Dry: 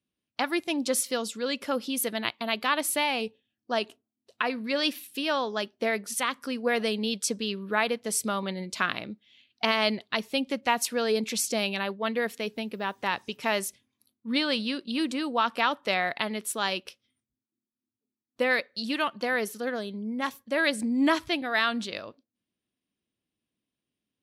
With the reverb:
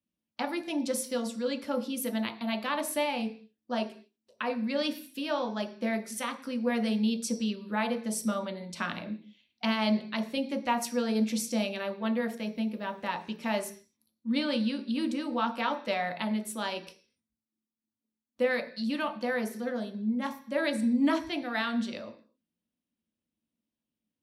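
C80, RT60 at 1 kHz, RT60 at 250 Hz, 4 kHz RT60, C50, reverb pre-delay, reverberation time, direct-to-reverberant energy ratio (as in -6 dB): 16.0 dB, 0.45 s, 0.55 s, no reading, 11.5 dB, 3 ms, 0.45 s, 2.0 dB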